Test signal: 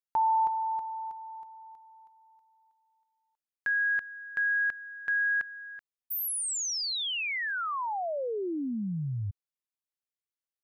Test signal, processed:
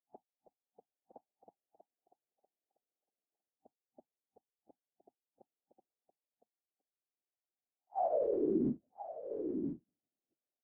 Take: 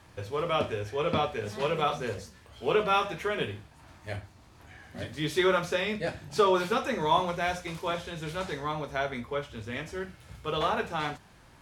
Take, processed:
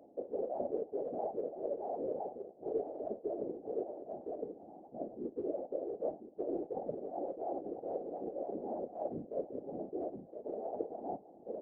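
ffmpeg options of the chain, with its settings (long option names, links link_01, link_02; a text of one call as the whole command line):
ffmpeg -i in.wav -af "aecho=1:1:1014:0.224,areverse,acompressor=threshold=-36dB:ratio=12:attack=0.47:release=574:knee=6:detection=peak,areverse,afftfilt=real='re*between(b*sr/4096,240,780)':imag='im*between(b*sr/4096,240,780)':win_size=4096:overlap=0.75,afftfilt=real='hypot(re,im)*cos(2*PI*random(0))':imag='hypot(re,im)*sin(2*PI*random(1))':win_size=512:overlap=0.75,volume=13.5dB" out.wav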